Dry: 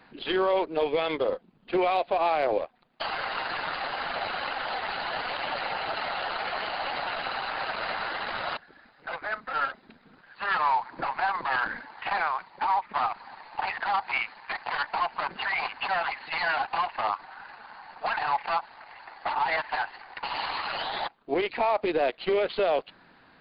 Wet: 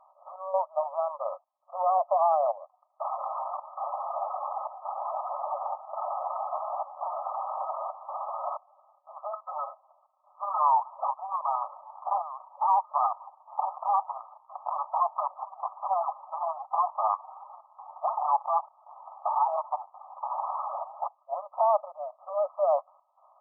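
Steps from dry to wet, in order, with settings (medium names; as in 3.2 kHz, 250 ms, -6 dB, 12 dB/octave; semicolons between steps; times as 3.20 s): trance gate "xxxx..xxxxxx" 167 bpm -12 dB; brick-wall FIR band-pass 550–1300 Hz; trim +2 dB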